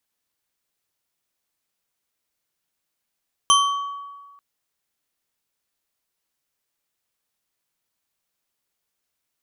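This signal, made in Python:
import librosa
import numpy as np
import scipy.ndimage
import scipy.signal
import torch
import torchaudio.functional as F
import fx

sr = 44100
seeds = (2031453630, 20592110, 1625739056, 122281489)

y = fx.strike_glass(sr, length_s=0.89, level_db=-13, body='bar', hz=1130.0, decay_s=1.51, tilt_db=2, modes=4)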